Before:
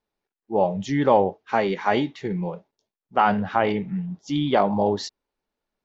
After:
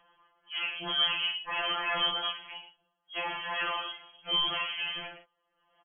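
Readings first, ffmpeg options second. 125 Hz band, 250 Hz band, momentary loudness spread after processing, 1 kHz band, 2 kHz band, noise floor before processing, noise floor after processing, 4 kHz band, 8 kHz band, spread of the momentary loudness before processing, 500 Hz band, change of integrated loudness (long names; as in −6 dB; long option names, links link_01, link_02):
−25.0 dB, −25.5 dB, 13 LU, −13.0 dB, −1.5 dB, below −85 dBFS, −79 dBFS, +9.5 dB, can't be measured, 10 LU, −21.0 dB, −7.0 dB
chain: -filter_complex "[0:a]equalizer=frequency=160:width_type=o:width=0.67:gain=10,equalizer=frequency=1000:width_type=o:width=0.67:gain=-11,equalizer=frequency=2500:width_type=o:width=0.67:gain=11,aecho=1:1:114:0.224,alimiter=limit=-11dB:level=0:latency=1,crystalizer=i=9.5:c=0,aresample=16000,asoftclip=type=tanh:threshold=-26.5dB,aresample=44100,asplit=2[link_01][link_02];[link_02]adelay=41,volume=-7dB[link_03];[link_01][link_03]amix=inputs=2:normalize=0,acompressor=mode=upward:threshold=-47dB:ratio=2.5,lowpass=frequency=2900:width_type=q:width=0.5098,lowpass=frequency=2900:width_type=q:width=0.6013,lowpass=frequency=2900:width_type=q:width=0.9,lowpass=frequency=2900:width_type=q:width=2.563,afreqshift=-3400,afftfilt=real='re*2.83*eq(mod(b,8),0)':imag='im*2.83*eq(mod(b,8),0)':win_size=2048:overlap=0.75"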